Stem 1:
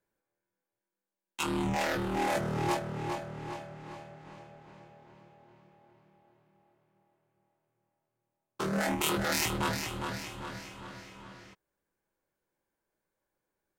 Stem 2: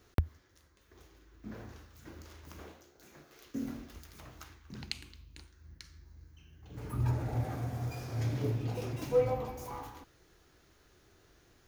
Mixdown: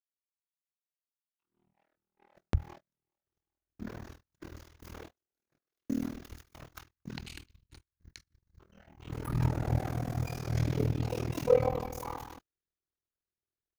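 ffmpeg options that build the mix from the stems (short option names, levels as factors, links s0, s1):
-filter_complex "[0:a]lowpass=3100,volume=0.141[s0];[1:a]acontrast=40,adelay=2350,volume=1.19[s1];[s0][s1]amix=inputs=2:normalize=0,agate=range=0.0112:threshold=0.00708:ratio=16:detection=peak,tremolo=f=40:d=0.974"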